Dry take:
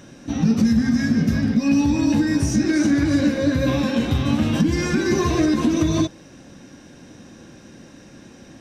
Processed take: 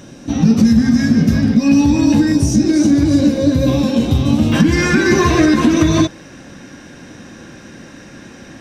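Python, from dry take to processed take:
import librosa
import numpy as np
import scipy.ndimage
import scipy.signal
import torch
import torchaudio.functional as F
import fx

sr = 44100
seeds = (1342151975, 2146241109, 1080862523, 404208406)

y = fx.peak_eq(x, sr, hz=1700.0, db=fx.steps((0.0, -3.0), (2.32, -11.5), (4.52, 5.5)), octaves=1.3)
y = y * 10.0 ** (6.5 / 20.0)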